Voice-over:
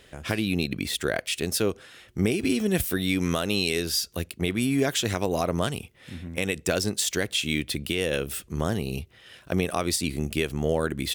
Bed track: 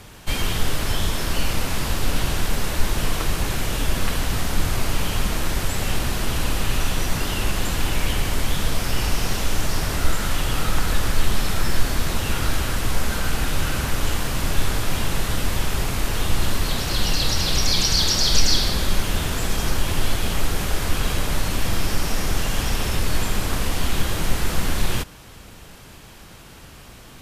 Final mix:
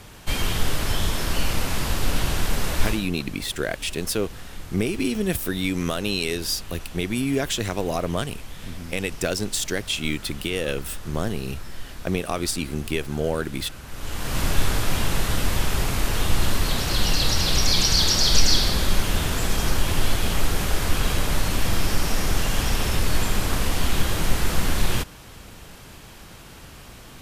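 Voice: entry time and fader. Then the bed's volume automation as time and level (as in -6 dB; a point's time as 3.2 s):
2.55 s, 0.0 dB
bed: 2.88 s -1 dB
3.09 s -16.5 dB
13.83 s -16.5 dB
14.38 s 0 dB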